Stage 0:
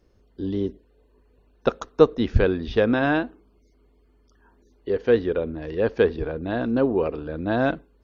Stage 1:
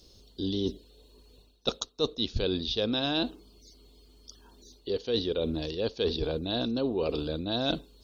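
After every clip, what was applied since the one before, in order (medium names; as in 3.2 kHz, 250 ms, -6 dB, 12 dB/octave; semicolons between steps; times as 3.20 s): resonant high shelf 2.7 kHz +13.5 dB, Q 3; reverse; compression 6:1, threshold -29 dBFS, peak gain reduction 19.5 dB; reverse; trim +2.5 dB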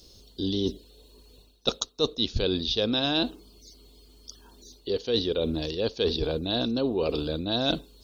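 treble shelf 5.9 kHz +5.5 dB; trim +2.5 dB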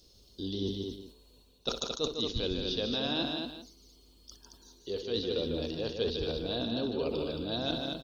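multi-tap echo 61/151/222/335/386 ms -15/-6/-5/-18/-15.5 dB; decay stretcher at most 140 dB/s; trim -8 dB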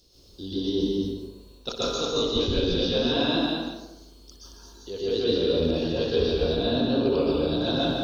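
plate-style reverb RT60 0.95 s, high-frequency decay 0.5×, pre-delay 110 ms, DRR -7.5 dB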